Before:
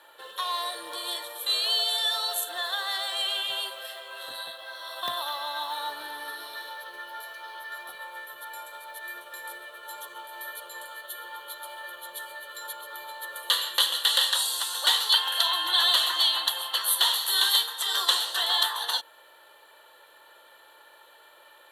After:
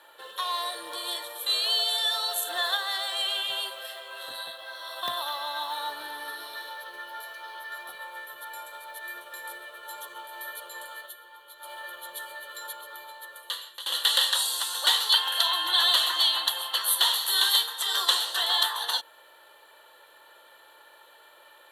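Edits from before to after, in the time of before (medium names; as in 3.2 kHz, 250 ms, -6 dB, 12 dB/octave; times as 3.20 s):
2.45–2.77 s: gain +3.5 dB
11.02–11.71 s: dip -9.5 dB, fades 0.14 s
12.57–13.86 s: fade out, to -20.5 dB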